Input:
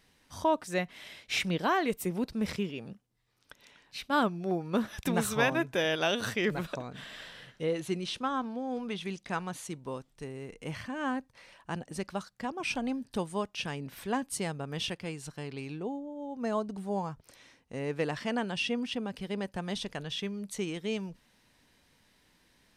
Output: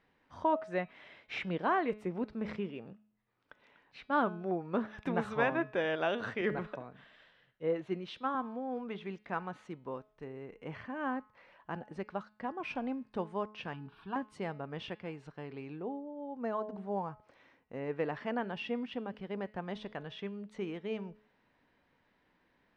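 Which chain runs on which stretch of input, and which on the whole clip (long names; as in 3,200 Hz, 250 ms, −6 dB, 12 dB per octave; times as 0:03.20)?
0:06.41–0:08.35: one scale factor per block 7 bits + multiband upward and downward expander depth 70%
0:13.73–0:14.16: phaser with its sweep stopped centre 2,000 Hz, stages 6 + comb filter 6.3 ms, depth 32%
whole clip: low-pass filter 1,800 Hz 12 dB per octave; low-shelf EQ 170 Hz −10 dB; hum removal 212.6 Hz, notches 25; level −1 dB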